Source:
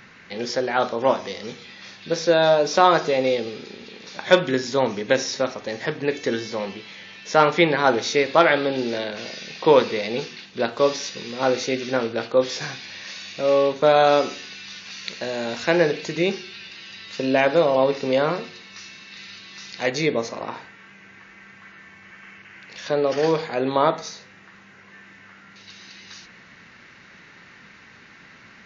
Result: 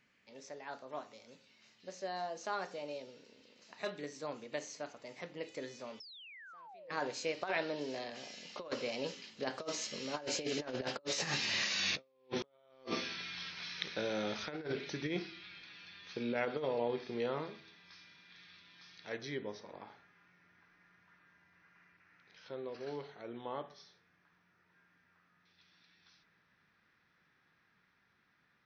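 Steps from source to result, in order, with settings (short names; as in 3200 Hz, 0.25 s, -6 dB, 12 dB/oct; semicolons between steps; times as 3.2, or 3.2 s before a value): Doppler pass-by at 11.83, 38 m/s, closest 16 m; painted sound fall, 6–6.9, 480–5500 Hz -28 dBFS; negative-ratio compressor -38 dBFS, ratio -0.5; gain -1.5 dB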